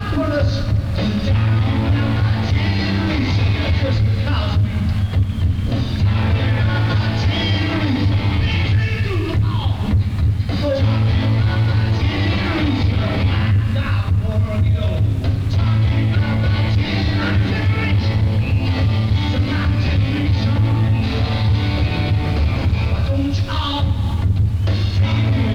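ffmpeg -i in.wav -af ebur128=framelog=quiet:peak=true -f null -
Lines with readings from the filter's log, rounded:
Integrated loudness:
  I:         -18.0 LUFS
  Threshold: -28.0 LUFS
Loudness range:
  LRA:         0.8 LU
  Threshold: -38.0 LUFS
  LRA low:   -18.4 LUFS
  LRA high:  -17.6 LUFS
True peak:
  Peak:       -7.7 dBFS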